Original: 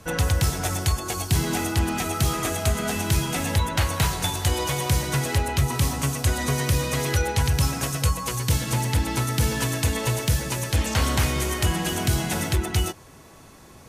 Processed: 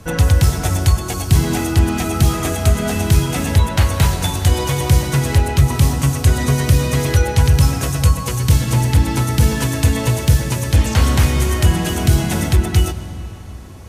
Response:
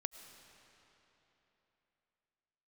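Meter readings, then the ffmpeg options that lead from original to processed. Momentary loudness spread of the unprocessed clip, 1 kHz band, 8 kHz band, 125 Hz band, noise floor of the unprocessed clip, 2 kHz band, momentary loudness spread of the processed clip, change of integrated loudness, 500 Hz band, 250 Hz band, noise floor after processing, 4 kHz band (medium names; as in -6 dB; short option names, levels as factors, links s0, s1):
2 LU, +4.0 dB, +3.5 dB, +9.5 dB, -48 dBFS, +3.5 dB, 3 LU, +8.0 dB, +6.0 dB, +8.0 dB, -29 dBFS, +3.5 dB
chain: -filter_complex "[0:a]asplit=2[s0][s1];[s1]lowshelf=f=340:g=10[s2];[1:a]atrim=start_sample=2205[s3];[s2][s3]afir=irnorm=-1:irlink=0,volume=1.88[s4];[s0][s4]amix=inputs=2:normalize=0,volume=0.596"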